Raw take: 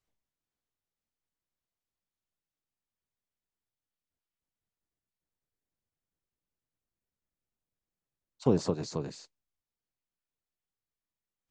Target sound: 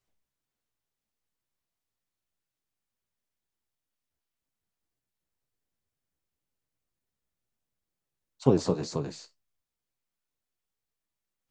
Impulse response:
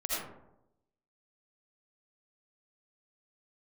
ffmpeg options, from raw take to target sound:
-filter_complex "[0:a]flanger=delay=7.3:depth=9.3:regen=54:speed=2:shape=sinusoidal,asplit=2[s0][s1];[1:a]atrim=start_sample=2205,atrim=end_sample=3087[s2];[s1][s2]afir=irnorm=-1:irlink=0,volume=0.141[s3];[s0][s3]amix=inputs=2:normalize=0,volume=2"

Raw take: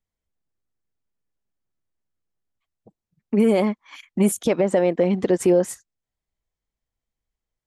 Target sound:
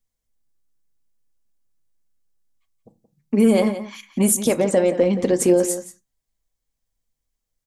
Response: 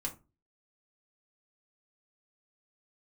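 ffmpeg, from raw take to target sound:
-filter_complex "[0:a]bass=f=250:g=2,treble=f=4000:g=9,asplit=2[s0][s1];[s1]adelay=174.9,volume=0.251,highshelf=f=4000:g=-3.94[s2];[s0][s2]amix=inputs=2:normalize=0,asplit=2[s3][s4];[1:a]atrim=start_sample=2205,afade=t=out:st=0.27:d=0.01,atrim=end_sample=12348[s5];[s4][s5]afir=irnorm=-1:irlink=0,volume=0.596[s6];[s3][s6]amix=inputs=2:normalize=0,volume=0.708"

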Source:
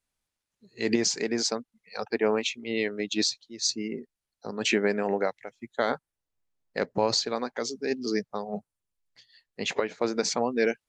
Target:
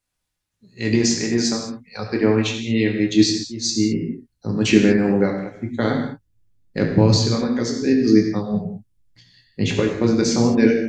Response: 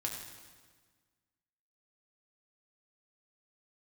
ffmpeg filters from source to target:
-filter_complex "[0:a]asubboost=boost=9.5:cutoff=230[s0];[1:a]atrim=start_sample=2205,afade=t=out:st=0.27:d=0.01,atrim=end_sample=12348[s1];[s0][s1]afir=irnorm=-1:irlink=0,volume=1.58"

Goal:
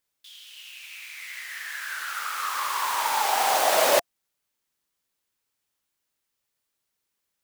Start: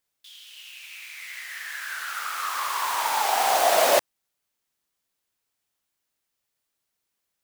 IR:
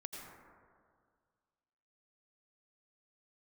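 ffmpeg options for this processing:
-af "bandreject=f=700:w=12"

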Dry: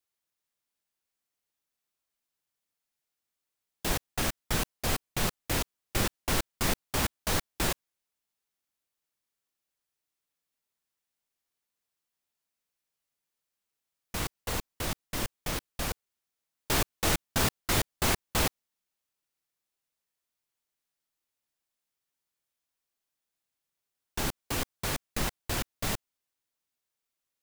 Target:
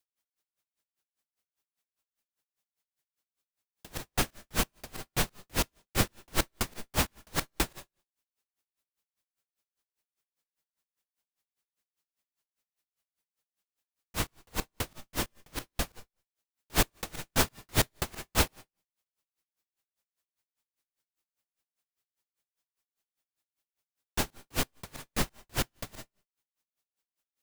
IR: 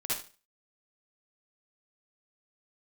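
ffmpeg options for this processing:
-filter_complex "[0:a]asplit=2[s0][s1];[1:a]atrim=start_sample=2205[s2];[s1][s2]afir=irnorm=-1:irlink=0,volume=0.106[s3];[s0][s3]amix=inputs=2:normalize=0,aeval=exprs='val(0)*pow(10,-37*(0.5-0.5*cos(2*PI*5*n/s))/20)':c=same,volume=1.68"

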